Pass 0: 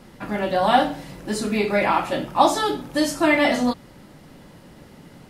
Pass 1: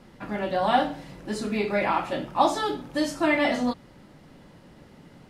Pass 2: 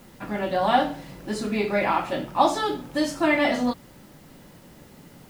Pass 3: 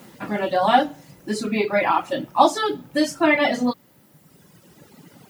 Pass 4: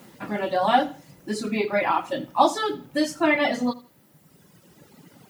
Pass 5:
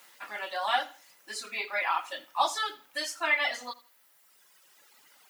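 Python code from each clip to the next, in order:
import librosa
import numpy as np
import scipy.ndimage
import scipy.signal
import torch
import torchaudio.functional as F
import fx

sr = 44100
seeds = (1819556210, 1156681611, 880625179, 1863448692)

y1 = fx.high_shelf(x, sr, hz=9300.0, db=-11.0)
y1 = y1 * 10.0 ** (-4.5 / 20.0)
y2 = fx.quant_dither(y1, sr, seeds[0], bits=10, dither='triangular')
y2 = y2 * 10.0 ** (1.5 / 20.0)
y3 = fx.dereverb_blind(y2, sr, rt60_s=2.0)
y3 = scipy.signal.sosfilt(scipy.signal.butter(2, 120.0, 'highpass', fs=sr, output='sos'), y3)
y3 = y3 * 10.0 ** (4.5 / 20.0)
y4 = fx.echo_feedback(y3, sr, ms=82, feedback_pct=28, wet_db=-19.0)
y4 = y4 * 10.0 ** (-3.0 / 20.0)
y5 = scipy.signal.sosfilt(scipy.signal.butter(2, 1200.0, 'highpass', fs=sr, output='sos'), y4)
y5 = y5 * 10.0 ** (-1.0 / 20.0)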